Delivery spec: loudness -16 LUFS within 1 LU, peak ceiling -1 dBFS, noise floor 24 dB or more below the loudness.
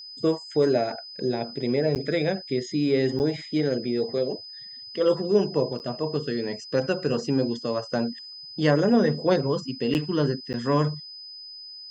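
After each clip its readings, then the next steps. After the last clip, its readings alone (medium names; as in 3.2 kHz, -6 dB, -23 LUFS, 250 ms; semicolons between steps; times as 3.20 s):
dropouts 5; longest dropout 9.2 ms; steady tone 5 kHz; tone level -39 dBFS; loudness -25.5 LUFS; peak level -8.0 dBFS; loudness target -16.0 LUFS
-> interpolate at 1.95/3.19/5.79/9.94/10.53 s, 9.2 ms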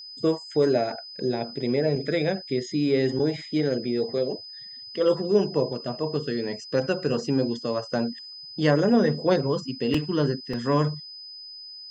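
dropouts 0; steady tone 5 kHz; tone level -39 dBFS
-> band-stop 5 kHz, Q 30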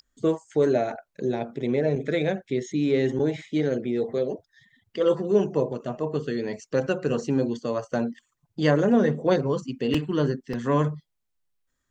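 steady tone not found; loudness -25.5 LUFS; peak level -8.0 dBFS; loudness target -16.0 LUFS
-> trim +9.5 dB; peak limiter -1 dBFS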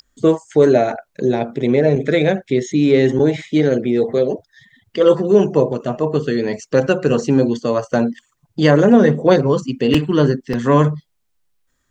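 loudness -16.0 LUFS; peak level -1.0 dBFS; noise floor -68 dBFS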